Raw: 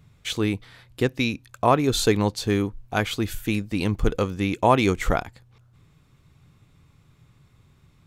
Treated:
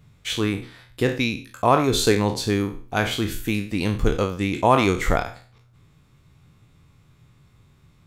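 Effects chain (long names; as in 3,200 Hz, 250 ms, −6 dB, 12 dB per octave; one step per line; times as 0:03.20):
peak hold with a decay on every bin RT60 0.42 s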